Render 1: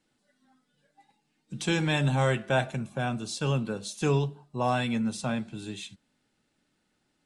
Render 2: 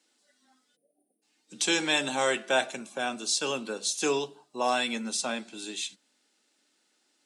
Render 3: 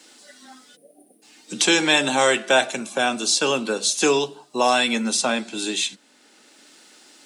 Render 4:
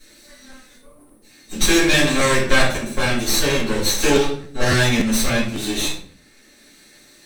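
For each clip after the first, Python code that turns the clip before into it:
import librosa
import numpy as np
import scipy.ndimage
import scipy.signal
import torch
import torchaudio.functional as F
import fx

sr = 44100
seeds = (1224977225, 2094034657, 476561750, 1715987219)

y1 = scipy.signal.sosfilt(scipy.signal.butter(4, 270.0, 'highpass', fs=sr, output='sos'), x)
y1 = fx.peak_eq(y1, sr, hz=6400.0, db=10.5, octaves=2.0)
y1 = fx.spec_erase(y1, sr, start_s=0.76, length_s=0.46, low_hz=760.0, high_hz=8800.0)
y2 = fx.band_squash(y1, sr, depth_pct=40)
y2 = y2 * 10.0 ** (9.0 / 20.0)
y3 = fx.lower_of_two(y2, sr, delay_ms=0.5)
y3 = fx.room_shoebox(y3, sr, seeds[0], volume_m3=57.0, walls='mixed', distance_m=2.2)
y3 = fx.buffer_crackle(y3, sr, first_s=0.51, period_s=0.28, block=512, kind='repeat')
y3 = y3 * 10.0 ** (-7.0 / 20.0)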